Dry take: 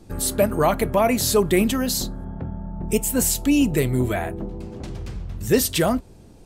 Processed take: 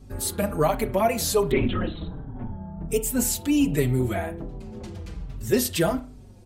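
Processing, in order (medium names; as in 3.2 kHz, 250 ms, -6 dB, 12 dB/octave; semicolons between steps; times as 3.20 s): wow and flutter 31 cents; 1.51–2.51 s: LPC vocoder at 8 kHz whisper; on a send at -12.5 dB: reverberation, pre-delay 32 ms; on the sum: hum 50 Hz, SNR 22 dB; endless flanger 4.8 ms -1.3 Hz; trim -1 dB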